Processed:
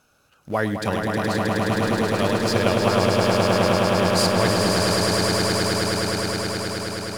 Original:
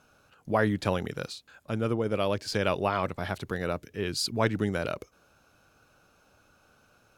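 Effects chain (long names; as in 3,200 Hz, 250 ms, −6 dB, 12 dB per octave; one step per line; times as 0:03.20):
high-shelf EQ 4,100 Hz +7 dB
in parallel at −10 dB: centre clipping without the shift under −30.5 dBFS
on the sum: echo that builds up and dies away 105 ms, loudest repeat 8, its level −4 dB
level −1 dB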